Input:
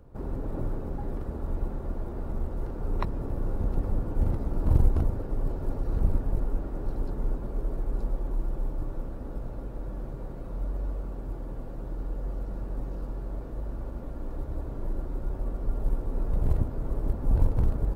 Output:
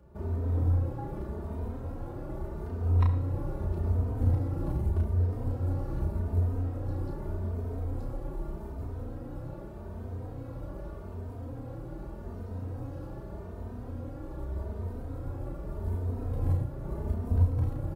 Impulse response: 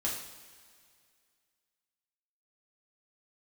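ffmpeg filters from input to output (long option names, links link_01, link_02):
-filter_complex "[0:a]highpass=60,equalizer=frequency=85:width_type=o:width=0.26:gain=14,alimiter=limit=-16.5dB:level=0:latency=1:release=310,asplit=2[link_01][link_02];[link_02]adelay=33,volume=-4dB[link_03];[link_01][link_03]amix=inputs=2:normalize=0,asplit=2[link_04][link_05];[1:a]atrim=start_sample=2205,adelay=67[link_06];[link_05][link_06]afir=irnorm=-1:irlink=0,volume=-14dB[link_07];[link_04][link_07]amix=inputs=2:normalize=0,asplit=2[link_08][link_09];[link_09]adelay=3,afreqshift=0.83[link_10];[link_08][link_10]amix=inputs=2:normalize=1"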